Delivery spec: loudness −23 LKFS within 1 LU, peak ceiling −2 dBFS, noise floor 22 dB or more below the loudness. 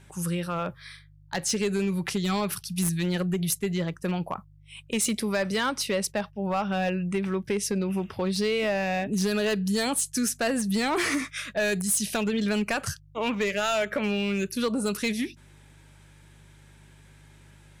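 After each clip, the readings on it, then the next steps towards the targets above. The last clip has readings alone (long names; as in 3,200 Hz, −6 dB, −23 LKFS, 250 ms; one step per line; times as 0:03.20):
share of clipped samples 1.2%; peaks flattened at −20.0 dBFS; mains hum 50 Hz; hum harmonics up to 150 Hz; level of the hum −52 dBFS; integrated loudness −27.5 LKFS; sample peak −20.0 dBFS; target loudness −23.0 LKFS
→ clipped peaks rebuilt −20 dBFS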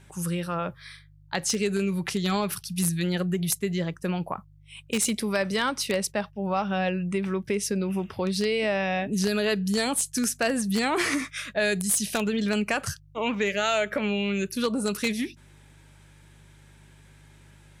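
share of clipped samples 0.0%; mains hum 50 Hz; hum harmonics up to 150 Hz; level of the hum −52 dBFS
→ hum removal 50 Hz, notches 3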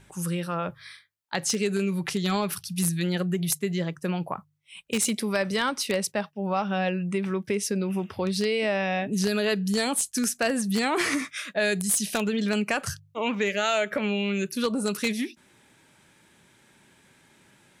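mains hum none found; integrated loudness −27.0 LKFS; sample peak −11.0 dBFS; target loudness −23.0 LKFS
→ level +4 dB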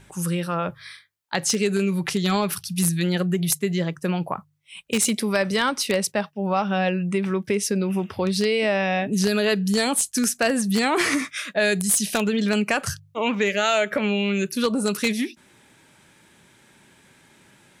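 integrated loudness −23.0 LKFS; sample peak −7.0 dBFS; background noise floor −56 dBFS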